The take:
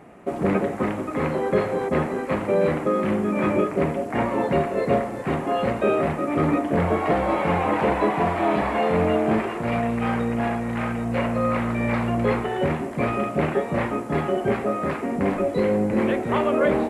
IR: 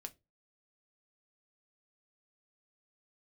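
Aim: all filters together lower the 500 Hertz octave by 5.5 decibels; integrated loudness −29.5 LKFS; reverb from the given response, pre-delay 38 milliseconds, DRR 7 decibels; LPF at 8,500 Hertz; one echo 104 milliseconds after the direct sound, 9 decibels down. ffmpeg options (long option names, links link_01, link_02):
-filter_complex "[0:a]lowpass=8500,equalizer=frequency=500:width_type=o:gain=-7,aecho=1:1:104:0.355,asplit=2[link_01][link_02];[1:a]atrim=start_sample=2205,adelay=38[link_03];[link_02][link_03]afir=irnorm=-1:irlink=0,volume=-2dB[link_04];[link_01][link_04]amix=inputs=2:normalize=0,volume=-5dB"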